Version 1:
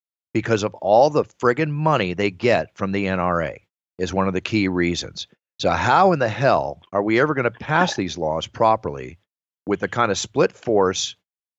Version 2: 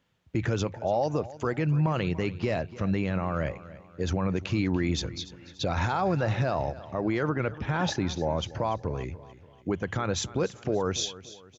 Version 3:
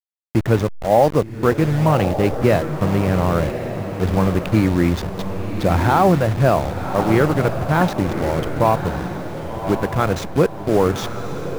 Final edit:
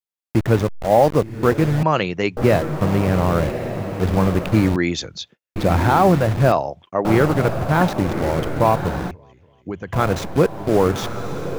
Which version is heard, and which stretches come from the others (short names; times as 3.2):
3
1.83–2.37 from 1
4.76–5.56 from 1
6.52–7.05 from 1
9.11–9.93 from 2